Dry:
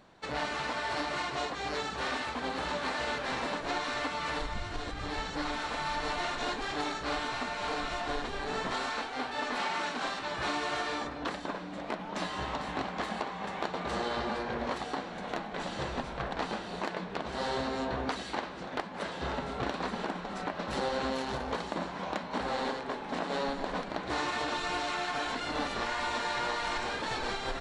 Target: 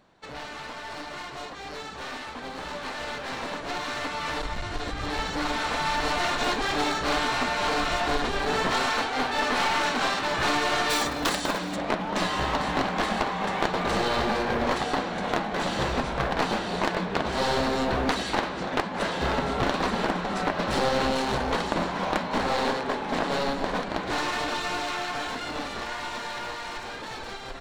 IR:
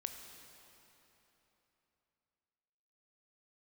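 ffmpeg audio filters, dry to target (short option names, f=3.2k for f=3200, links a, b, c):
-filter_complex "[0:a]aeval=exprs='clip(val(0),-1,0.0178)':c=same,dynaudnorm=f=860:g=11:m=13dB,asplit=3[a][b][c];[a]afade=t=out:st=10.89:d=0.02[d];[b]aemphasis=mode=production:type=75fm,afade=t=in:st=10.89:d=0.02,afade=t=out:st=11.75:d=0.02[e];[c]afade=t=in:st=11.75:d=0.02[f];[d][e][f]amix=inputs=3:normalize=0,volume=-2.5dB"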